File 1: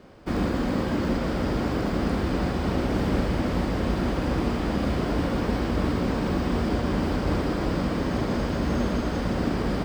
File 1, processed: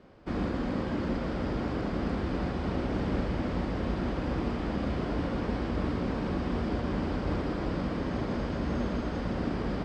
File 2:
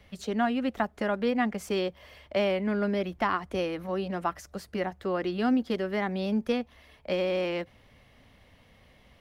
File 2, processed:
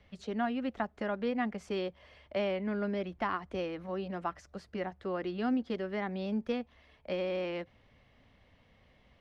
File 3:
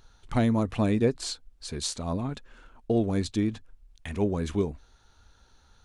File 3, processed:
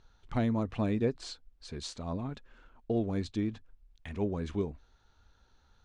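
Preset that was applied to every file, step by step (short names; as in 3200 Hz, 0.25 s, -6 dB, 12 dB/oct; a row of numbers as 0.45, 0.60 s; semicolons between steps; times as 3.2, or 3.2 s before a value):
air absorption 88 m; gain -5.5 dB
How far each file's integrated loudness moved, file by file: -5.5, -6.0, -5.5 LU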